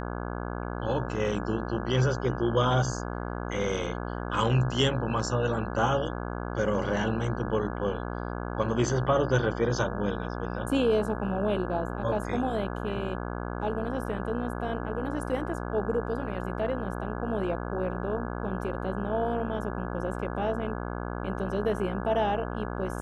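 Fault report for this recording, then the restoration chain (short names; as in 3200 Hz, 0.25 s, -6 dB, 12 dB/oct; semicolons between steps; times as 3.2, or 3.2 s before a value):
buzz 60 Hz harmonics 28 -34 dBFS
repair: de-hum 60 Hz, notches 28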